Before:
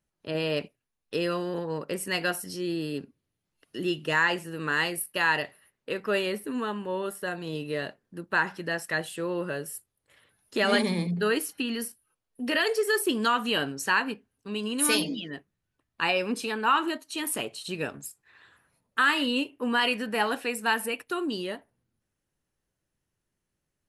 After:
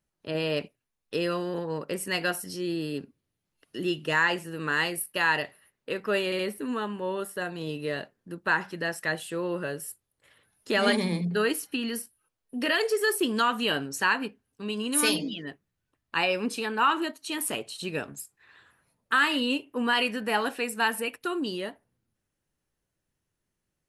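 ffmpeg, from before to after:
ffmpeg -i in.wav -filter_complex "[0:a]asplit=3[link_01][link_02][link_03];[link_01]atrim=end=6.322[link_04];[link_02]atrim=start=6.248:end=6.322[link_05];[link_03]atrim=start=6.248[link_06];[link_04][link_05]acrossfade=duration=0.004:curve1=hsin:curve2=hsin[link_07];[link_07][link_06]acrossfade=duration=0.004:curve1=hsin:curve2=hsin" out.wav

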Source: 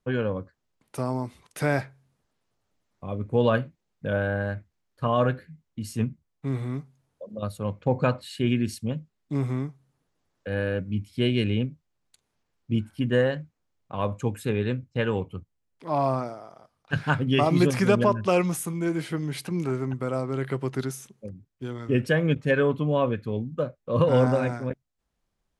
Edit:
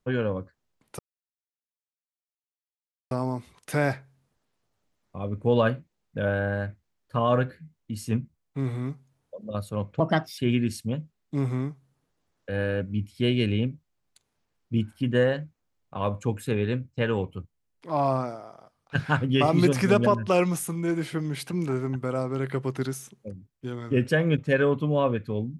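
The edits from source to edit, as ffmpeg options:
ffmpeg -i in.wav -filter_complex "[0:a]asplit=4[link_01][link_02][link_03][link_04];[link_01]atrim=end=0.99,asetpts=PTS-STARTPTS,afade=type=out:start_time=0.986:duration=0.004:curve=hsin,apad=pad_dur=2.12[link_05];[link_02]atrim=start=0.99:end=7.884,asetpts=PTS-STARTPTS,afade=type=in:duration=0.004:curve=hsin[link_06];[link_03]atrim=start=7.88:end=8.36,asetpts=PTS-STARTPTS,asetrate=55566,aresample=44100[link_07];[link_04]atrim=start=8.356[link_08];[link_05][link_06]concat=n=2:v=0:a=1[link_09];[link_09][link_07]acrossfade=duration=0.004:curve1=hsin:curve2=hsin[link_10];[link_10][link_08]acrossfade=duration=0.004:curve1=hsin:curve2=hsin" out.wav

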